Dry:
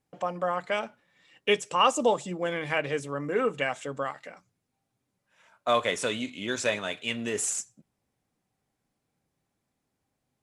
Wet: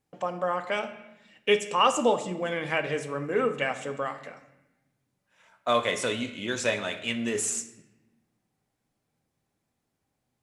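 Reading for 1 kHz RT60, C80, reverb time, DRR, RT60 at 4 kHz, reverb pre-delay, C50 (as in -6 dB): 0.90 s, 13.5 dB, 0.95 s, 8.5 dB, 0.80 s, 7 ms, 11.5 dB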